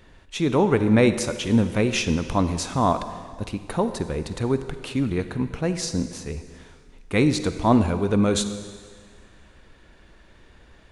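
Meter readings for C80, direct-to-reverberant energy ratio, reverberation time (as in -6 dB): 11.5 dB, 10.0 dB, 1.8 s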